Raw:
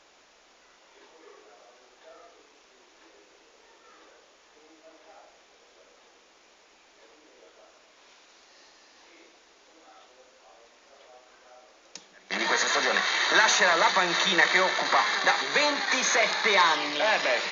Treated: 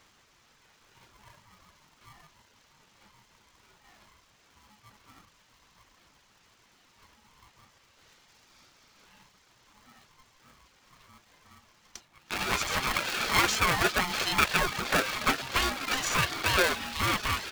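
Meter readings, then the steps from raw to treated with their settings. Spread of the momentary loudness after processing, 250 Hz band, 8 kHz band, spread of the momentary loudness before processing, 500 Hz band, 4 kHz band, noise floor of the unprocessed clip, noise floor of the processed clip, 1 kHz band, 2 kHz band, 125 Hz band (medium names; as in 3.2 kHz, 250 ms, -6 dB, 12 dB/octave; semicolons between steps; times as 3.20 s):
5 LU, 0.0 dB, no reading, 4 LU, -6.5 dB, -4.5 dB, -59 dBFS, -64 dBFS, -4.5 dB, -5.5 dB, +11.0 dB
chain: reverb removal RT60 0.74 s; dynamic bell 4.9 kHz, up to -4 dB, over -40 dBFS, Q 1.5; polarity switched at an audio rate 530 Hz; trim -2.5 dB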